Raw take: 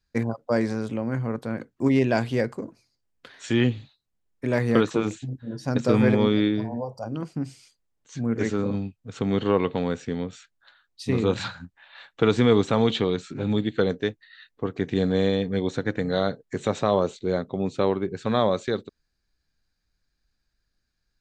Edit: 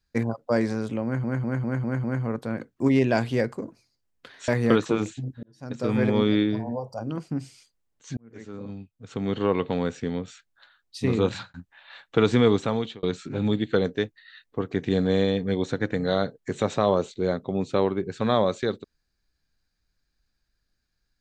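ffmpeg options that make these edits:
-filter_complex "[0:a]asplit=11[s0][s1][s2][s3][s4][s5][s6][s7][s8][s9][s10];[s0]atrim=end=1.242[s11];[s1]atrim=start=1.038:end=1.242[s12];[s2]atrim=start=1.038:end=1.242[s13];[s3]atrim=start=1.038:end=1.242[s14];[s4]atrim=start=1.038:end=1.242[s15];[s5]atrim=start=1.038:end=3.482[s16];[s6]atrim=start=4.528:end=5.48,asetpts=PTS-STARTPTS,afade=t=out:st=0.948:d=0.004:c=hsin[s17];[s7]atrim=start=5.48:end=8.22,asetpts=PTS-STARTPTS,afade=t=in:d=0.87,afade=t=out:st=2.736:d=0.004:c=hsin[s18];[s8]atrim=start=8.22:end=11.59,asetpts=PTS-STARTPTS,afade=t=in:d=1.63,afade=t=out:st=3.09:d=0.28[s19];[s9]atrim=start=11.59:end=13.08,asetpts=PTS-STARTPTS,afade=t=in:d=0.004:c=hsin,afade=t=out:st=0.74:d=0.75:c=qsin[s20];[s10]atrim=start=13.08,asetpts=PTS-STARTPTS,afade=t=in:d=0.004:c=hsin[s21];[s11][s12]acrossfade=d=0.004:c1=hsin:c2=hsin[s22];[s22][s13]acrossfade=d=0.004:c1=hsin:c2=hsin[s23];[s23][s14]acrossfade=d=0.004:c1=hsin:c2=hsin[s24];[s24][s15]acrossfade=d=0.004:c1=hsin:c2=hsin[s25];[s25][s16]acrossfade=d=0.004:c1=hsin:c2=hsin[s26];[s17][s18][s19][s20][s21]concat=n=5:v=0:a=1[s27];[s26][s27]acrossfade=d=0.004:c1=hsin:c2=hsin"

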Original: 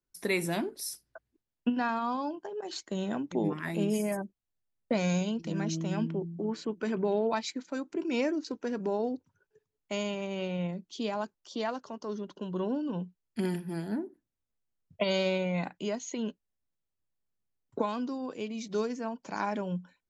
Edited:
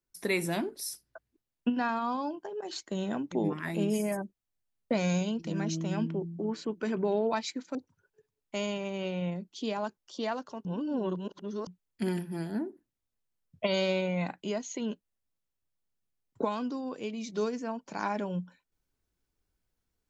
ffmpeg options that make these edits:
-filter_complex "[0:a]asplit=4[s0][s1][s2][s3];[s0]atrim=end=7.752[s4];[s1]atrim=start=9.118:end=12.022[s5];[s2]atrim=start=12.018:end=13.042,asetpts=PTS-STARTPTS,areverse[s6];[s3]atrim=start=13.038[s7];[s4][s5]acrossfade=d=0.004:c1=hsin:c2=hsin[s8];[s8][s6]acrossfade=d=0.004:c1=hsin:c2=hsin[s9];[s9][s7]acrossfade=d=0.004:c1=hsin:c2=hsin"

